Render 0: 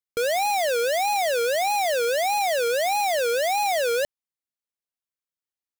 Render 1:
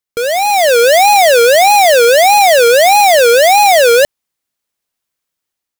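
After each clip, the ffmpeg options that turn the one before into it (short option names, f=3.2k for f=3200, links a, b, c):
-af "dynaudnorm=f=230:g=5:m=8dB,volume=8dB"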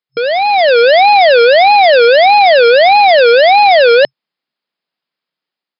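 -af "afftfilt=real='re*between(b*sr/4096,130,5200)':imag='im*between(b*sr/4096,130,5200)':win_size=4096:overlap=0.75,volume=1dB"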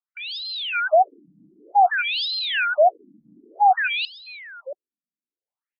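-af "aecho=1:1:678:0.133,afftfilt=real='re*between(b*sr/1024,210*pow(3900/210,0.5+0.5*sin(2*PI*0.54*pts/sr))/1.41,210*pow(3900/210,0.5+0.5*sin(2*PI*0.54*pts/sr))*1.41)':imag='im*between(b*sr/1024,210*pow(3900/210,0.5+0.5*sin(2*PI*0.54*pts/sr))/1.41,210*pow(3900/210,0.5+0.5*sin(2*PI*0.54*pts/sr))*1.41)':win_size=1024:overlap=0.75,volume=-6dB"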